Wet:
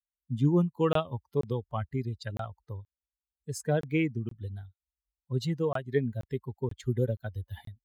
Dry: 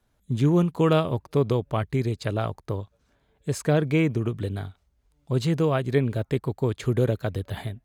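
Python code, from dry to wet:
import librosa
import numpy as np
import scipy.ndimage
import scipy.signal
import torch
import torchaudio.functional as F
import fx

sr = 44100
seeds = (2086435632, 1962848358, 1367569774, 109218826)

y = fx.bin_expand(x, sr, power=2.0)
y = scipy.signal.sosfilt(scipy.signal.butter(4, 40.0, 'highpass', fs=sr, output='sos'), y)
y = fx.buffer_crackle(y, sr, first_s=0.93, period_s=0.48, block=1024, kind='zero')
y = y * 10.0 ** (-2.0 / 20.0)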